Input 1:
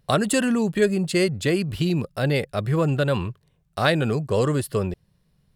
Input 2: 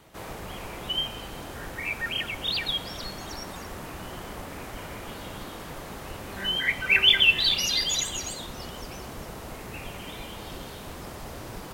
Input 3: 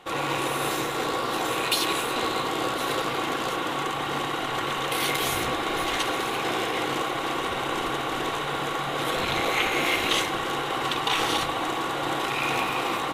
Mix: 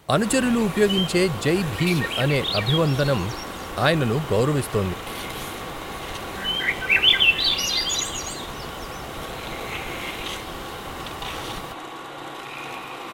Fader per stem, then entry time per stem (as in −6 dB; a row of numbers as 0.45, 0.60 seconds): +0.5, +2.0, −8.0 decibels; 0.00, 0.00, 0.15 seconds